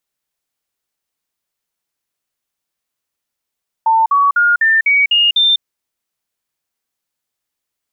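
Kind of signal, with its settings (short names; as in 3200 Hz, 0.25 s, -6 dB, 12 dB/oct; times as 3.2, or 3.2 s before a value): stepped sine 896 Hz up, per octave 3, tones 7, 0.20 s, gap 0.05 s -8.5 dBFS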